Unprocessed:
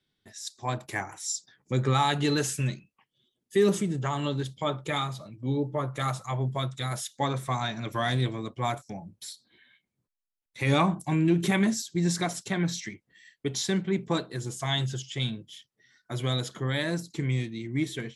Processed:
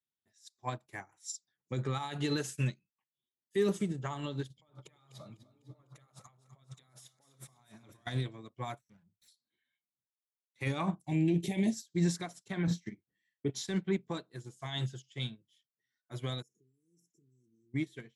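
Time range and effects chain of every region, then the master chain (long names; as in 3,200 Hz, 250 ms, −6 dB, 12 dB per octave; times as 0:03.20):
0:04.50–0:08.07: compressor whose output falls as the input rises −41 dBFS + echo with a time of its own for lows and highs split 410 Hz, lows 93 ms, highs 250 ms, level −9 dB
0:08.79–0:09.28: lower of the sound and its delayed copy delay 0.51 ms + flat-topped bell 590 Hz −8 dB 2.6 octaves
0:11.07–0:11.74: transient designer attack −8 dB, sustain −1 dB + Butterworth band-reject 1,300 Hz, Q 0.99
0:12.67–0:13.50: tilt shelving filter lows +7 dB, about 1,200 Hz + double-tracking delay 35 ms −7 dB
0:16.42–0:17.74: low-shelf EQ 340 Hz −10.5 dB + downward compressor 8 to 1, threshold −40 dBFS + linear-phase brick-wall band-stop 480–5,200 Hz
whole clip: high-pass filter 52 Hz; brickwall limiter −20 dBFS; expander for the loud parts 2.5 to 1, over −41 dBFS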